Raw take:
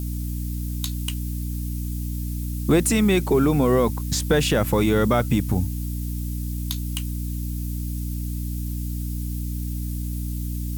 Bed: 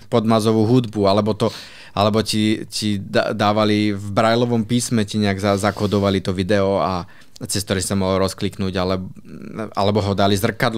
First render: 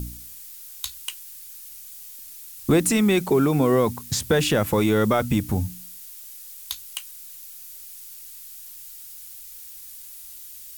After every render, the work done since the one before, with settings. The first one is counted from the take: de-hum 60 Hz, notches 5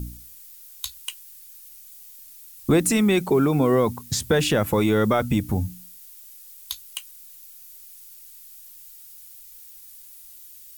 noise reduction 6 dB, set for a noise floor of -42 dBFS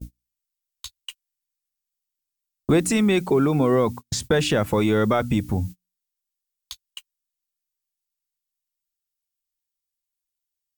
gate -31 dBFS, range -36 dB; peaking EQ 13 kHz -11.5 dB 0.58 oct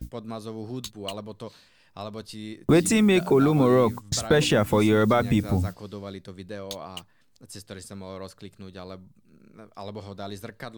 add bed -20 dB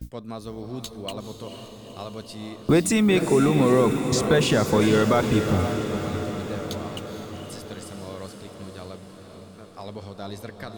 echo that smears into a reverb 469 ms, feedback 66%, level -7.5 dB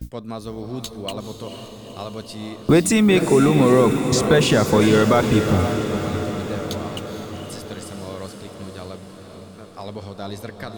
trim +4 dB

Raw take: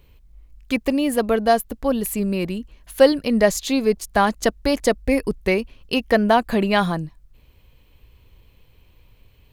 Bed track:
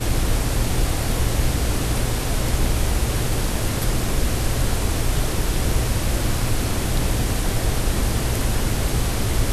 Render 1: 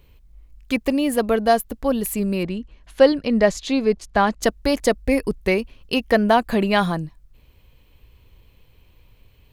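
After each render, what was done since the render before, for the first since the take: 2.43–4.41 s: distance through air 80 m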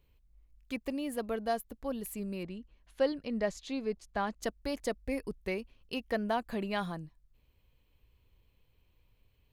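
trim -15.5 dB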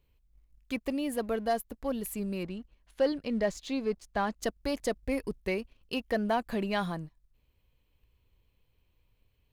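waveshaping leveller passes 1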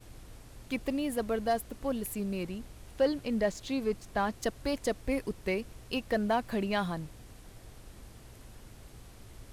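add bed track -29.5 dB

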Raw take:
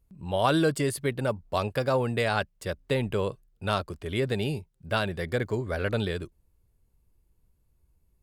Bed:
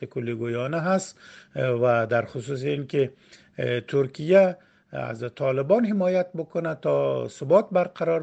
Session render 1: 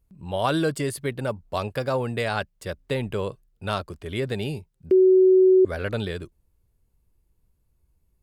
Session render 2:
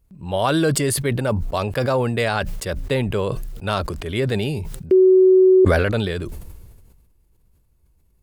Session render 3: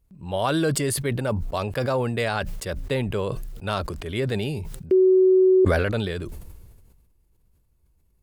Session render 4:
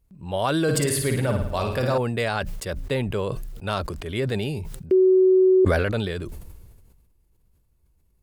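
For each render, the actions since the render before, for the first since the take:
4.91–5.65 s: bleep 374 Hz -12 dBFS
in parallel at -2 dB: peak limiter -16.5 dBFS, peak gain reduction 7.5 dB; on the sum: decay stretcher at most 34 dB/s
trim -4 dB
0.63–1.98 s: flutter echo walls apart 9.5 m, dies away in 0.71 s

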